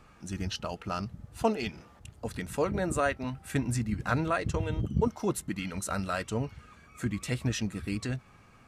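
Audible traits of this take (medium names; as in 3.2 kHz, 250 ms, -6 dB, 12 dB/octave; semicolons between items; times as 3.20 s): noise floor -57 dBFS; spectral tilt -5.5 dB/octave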